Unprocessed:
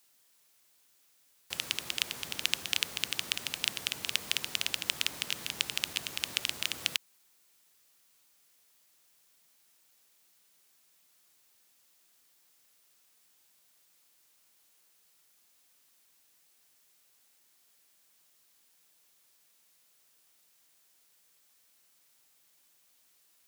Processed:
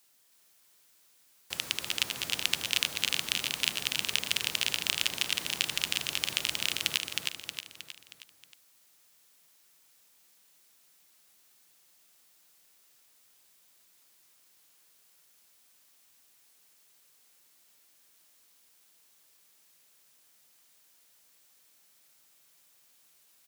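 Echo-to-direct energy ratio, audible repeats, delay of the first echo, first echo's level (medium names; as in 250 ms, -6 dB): -2.0 dB, 5, 315 ms, -3.0 dB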